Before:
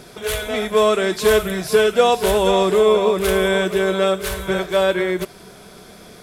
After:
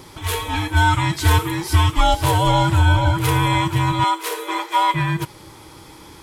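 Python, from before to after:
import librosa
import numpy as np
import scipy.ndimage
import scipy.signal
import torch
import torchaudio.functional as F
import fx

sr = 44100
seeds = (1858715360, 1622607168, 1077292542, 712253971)

y = fx.band_invert(x, sr, width_hz=500)
y = fx.cheby2_highpass(y, sr, hz=170.0, order=4, stop_db=40, at=(4.04, 4.94))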